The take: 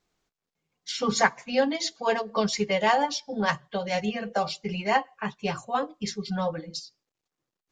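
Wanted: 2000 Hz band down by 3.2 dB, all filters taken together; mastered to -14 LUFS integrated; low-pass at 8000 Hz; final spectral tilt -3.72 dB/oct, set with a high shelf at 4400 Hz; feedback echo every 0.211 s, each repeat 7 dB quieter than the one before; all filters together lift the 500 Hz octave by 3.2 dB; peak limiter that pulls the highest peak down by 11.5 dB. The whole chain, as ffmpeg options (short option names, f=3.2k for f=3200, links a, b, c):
-af "lowpass=8k,equalizer=f=500:t=o:g=4,equalizer=f=2k:t=o:g=-5.5,highshelf=f=4.4k:g=7.5,alimiter=limit=-18.5dB:level=0:latency=1,aecho=1:1:211|422|633|844|1055:0.447|0.201|0.0905|0.0407|0.0183,volume=14.5dB"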